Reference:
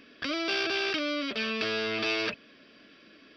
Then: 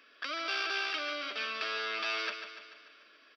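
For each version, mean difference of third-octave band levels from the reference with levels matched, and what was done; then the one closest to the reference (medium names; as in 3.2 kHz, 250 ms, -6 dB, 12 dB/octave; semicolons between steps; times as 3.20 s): 6.0 dB: high-pass 610 Hz 12 dB/octave; peaking EQ 1.3 kHz +6.5 dB 0.49 oct; on a send: feedback delay 146 ms, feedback 56%, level -9 dB; on the sum: trim -5 dB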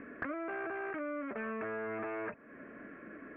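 10.5 dB: steep low-pass 2 kHz 48 dB/octave; dynamic bell 860 Hz, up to +6 dB, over -51 dBFS, Q 1.5; compression 6:1, threshold -45 dBFS, peak gain reduction 16.5 dB; trim +7.5 dB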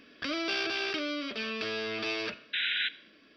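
2.5 dB: de-hum 130.1 Hz, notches 33; gain riding 2 s; painted sound noise, 2.53–2.89 s, 1.4–4 kHz -27 dBFS; Schroeder reverb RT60 0.7 s, combs from 30 ms, DRR 18 dB; trim -3.5 dB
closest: third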